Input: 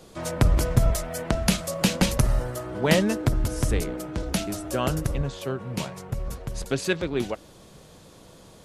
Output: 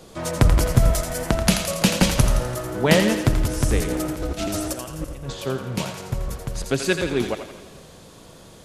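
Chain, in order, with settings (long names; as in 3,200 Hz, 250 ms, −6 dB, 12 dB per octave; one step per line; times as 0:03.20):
0:03.87–0:05.33: compressor whose output falls as the input rises −31 dBFS, ratio −0.5
feedback echo with a high-pass in the loop 84 ms, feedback 55%, high-pass 650 Hz, level −6.5 dB
feedback echo with a swinging delay time 113 ms, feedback 66%, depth 89 cents, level −17 dB
level +3.5 dB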